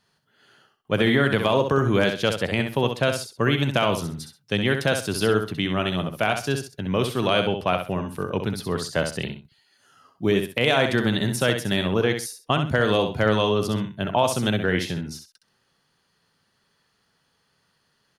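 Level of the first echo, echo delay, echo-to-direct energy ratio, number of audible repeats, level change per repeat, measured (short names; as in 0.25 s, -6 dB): -7.0 dB, 65 ms, -6.5 dB, 2, -12.0 dB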